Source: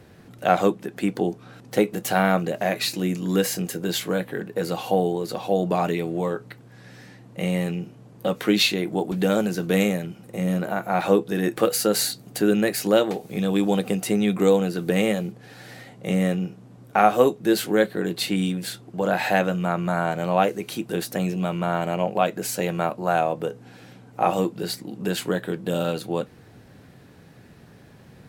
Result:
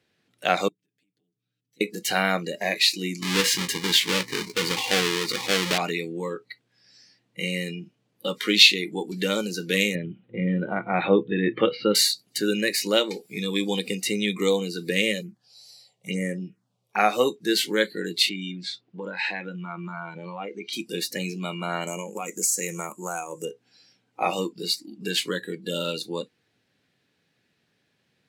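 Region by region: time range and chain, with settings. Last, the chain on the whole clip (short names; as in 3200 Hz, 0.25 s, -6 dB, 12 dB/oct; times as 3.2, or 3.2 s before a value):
0.68–1.81 passive tone stack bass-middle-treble 10-0-1 + compressor, threshold -51 dBFS + comb 6.8 ms, depth 74%
3.22–5.78 half-waves squared off + compressor 1.5:1, threshold -21 dBFS
9.95–11.95 Chebyshev low-pass 3400 Hz, order 4 + low shelf 460 Hz +8.5 dB
15.21–17 de-hum 111 Hz, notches 18 + envelope phaser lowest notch 220 Hz, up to 4300 Hz, full sweep at -17.5 dBFS
18.29–20.73 air absorption 130 m + compressor 4:1, threshold -24 dBFS
21.87–23.45 resonant high shelf 5300 Hz +10.5 dB, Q 3 + compressor 12:1, threshold -20 dBFS
whole clip: weighting filter D; spectral noise reduction 18 dB; gain -4 dB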